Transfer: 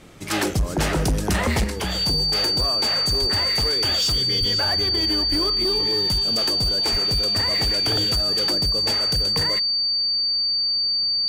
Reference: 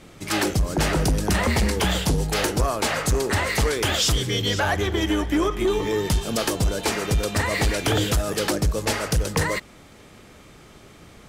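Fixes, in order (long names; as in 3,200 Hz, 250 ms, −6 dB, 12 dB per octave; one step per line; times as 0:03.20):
clipped peaks rebuilt −16 dBFS
notch filter 4,600 Hz, Q 30
high-pass at the plosives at 0:03.20/0:04.39/0:05.30/0:06.91
level correction +4.5 dB, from 0:01.64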